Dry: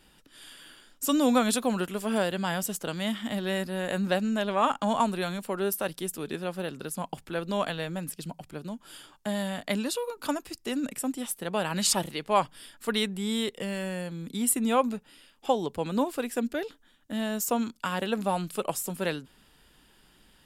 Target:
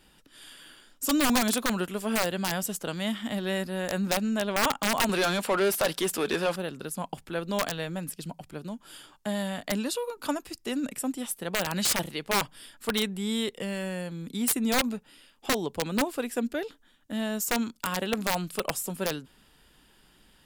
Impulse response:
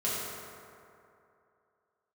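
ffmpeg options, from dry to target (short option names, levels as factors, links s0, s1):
-filter_complex "[0:a]asettb=1/sr,asplit=3[s0][s1][s2];[s0]atrim=end=5.094[s3];[s1]atrim=start=5.09:end=6.56,asetpts=PTS-STARTPTS,afade=t=in:d=0.004:c=qsin,afade=t=out:st=1.466:d=0.004:c=qsin,asplit=2[s4][s5];[s5]highpass=f=720:p=1,volume=12.6,asoftclip=type=tanh:threshold=0.158[s6];[s4][s6]amix=inputs=2:normalize=0,lowpass=f=4700:p=1,volume=0.501[s7];[s2]atrim=start=6.556[s8];[s3][s7]acrossfade=d=0.004:c1=hsin:c2=qsin[s9];[s9][s8]acrossfade=d=0.004:c1=qsin:c2=hsin,aeval=exprs='(mod(7.08*val(0)+1,2)-1)/7.08':c=same"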